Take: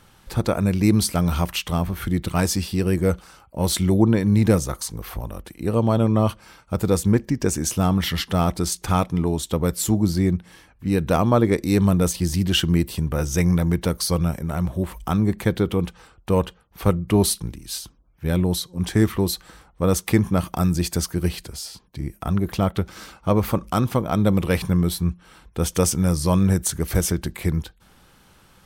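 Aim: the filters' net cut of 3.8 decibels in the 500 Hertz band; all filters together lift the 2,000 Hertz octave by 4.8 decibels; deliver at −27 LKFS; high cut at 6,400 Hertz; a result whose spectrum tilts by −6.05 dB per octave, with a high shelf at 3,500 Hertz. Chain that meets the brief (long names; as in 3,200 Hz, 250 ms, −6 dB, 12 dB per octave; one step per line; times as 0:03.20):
low-pass filter 6,400 Hz
parametric band 500 Hz −5 dB
parametric band 2,000 Hz +8.5 dB
high-shelf EQ 3,500 Hz −7 dB
level −4 dB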